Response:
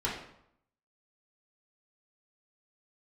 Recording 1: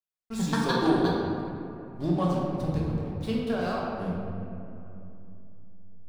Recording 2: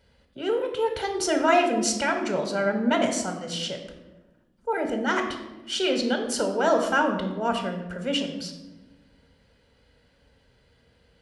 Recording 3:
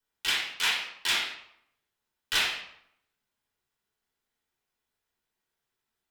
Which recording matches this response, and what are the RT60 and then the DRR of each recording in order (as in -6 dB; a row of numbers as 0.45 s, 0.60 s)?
3; 2.9 s, 1.1 s, 0.75 s; -5.5 dB, 3.5 dB, -7.0 dB